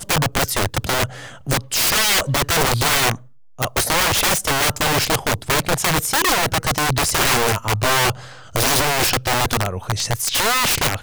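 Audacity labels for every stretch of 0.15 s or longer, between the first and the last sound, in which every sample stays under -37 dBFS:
3.260000	3.590000	silence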